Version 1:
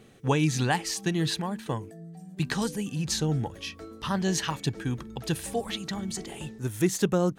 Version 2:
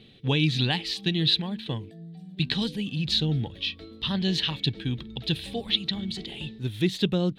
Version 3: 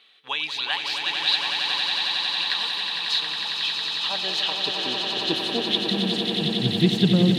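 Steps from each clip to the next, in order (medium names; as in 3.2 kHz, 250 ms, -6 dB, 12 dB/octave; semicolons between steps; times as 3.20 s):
FFT filter 210 Hz 0 dB, 1.3 kHz -11 dB, 3.8 kHz +12 dB, 6.3 kHz -16 dB, 13 kHz -14 dB; trim +1.5 dB
high-pass sweep 1.1 kHz -> 140 Hz, 3.41–6.72 s; echo with a slow build-up 91 ms, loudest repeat 8, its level -7 dB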